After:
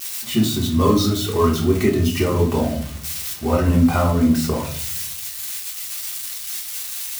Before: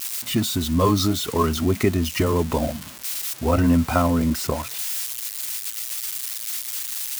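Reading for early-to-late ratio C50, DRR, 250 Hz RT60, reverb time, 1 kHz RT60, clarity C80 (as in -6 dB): 8.5 dB, -2.0 dB, 1.0 s, 0.55 s, 0.45 s, 13.5 dB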